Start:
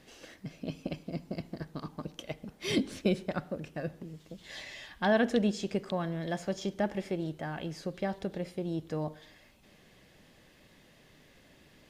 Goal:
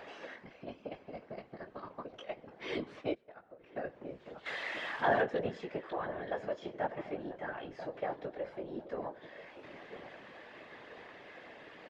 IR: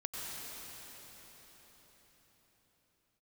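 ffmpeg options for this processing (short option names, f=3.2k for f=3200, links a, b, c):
-filter_complex "[0:a]asettb=1/sr,asplit=3[a][b][c];[a]atrim=end=4.464[d];[b]atrim=start=4.46:end=5.21,asetpts=PTS-STARTPTS,afade=t=in:d=0.004:c=qsin,afade=t=out:st=0.746:d=0.004:c=qsin,aeval=exprs='val(0)+0.5*0.0266*sgn(val(0))':c=same[e];[c]atrim=start=5.206[f];[d][e]acrossfade=d=0.004:c1=hsin:c2=qsin[g];[g][f]acrossfade=d=0.004:c1=qsin:c2=hsin,acompressor=mode=upward:threshold=-32dB:ratio=2.5,lowpass=1.9k,asplit=2[h][i];[i]adelay=19,volume=-4.5dB[j];[h][j]amix=inputs=2:normalize=0,asplit=2[k][l];[l]adelay=989,lowpass=f=920:p=1,volume=-11dB,asplit=2[m][n];[n]adelay=989,lowpass=f=920:p=1,volume=0.38,asplit=2[o][p];[p]adelay=989,lowpass=f=920:p=1,volume=0.38,asplit=2[q][r];[r]adelay=989,lowpass=f=920:p=1,volume=0.38[s];[k][m][o][q][s]amix=inputs=5:normalize=0,asplit=3[t][u][v];[t]afade=t=out:st=3.13:d=0.02[w];[u]acompressor=threshold=-44dB:ratio=12,afade=t=in:st=3.13:d=0.02,afade=t=out:st=3.75:d=0.02[x];[v]afade=t=in:st=3.75:d=0.02[y];[w][x][y]amix=inputs=3:normalize=0,highpass=480,afftfilt=real='hypot(re,im)*cos(2*PI*random(0))':imag='hypot(re,im)*sin(2*PI*random(1))':win_size=512:overlap=0.75,volume=4.5dB"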